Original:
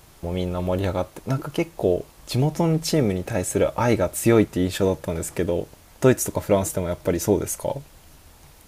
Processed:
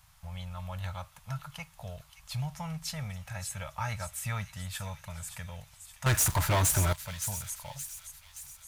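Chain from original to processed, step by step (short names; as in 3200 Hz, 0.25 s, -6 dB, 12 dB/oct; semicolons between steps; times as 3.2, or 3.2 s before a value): Chebyshev band-stop 120–1000 Hz, order 2; 6.06–6.93 sample leveller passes 5; thin delay 0.572 s, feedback 55%, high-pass 3200 Hz, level -8 dB; gain -9 dB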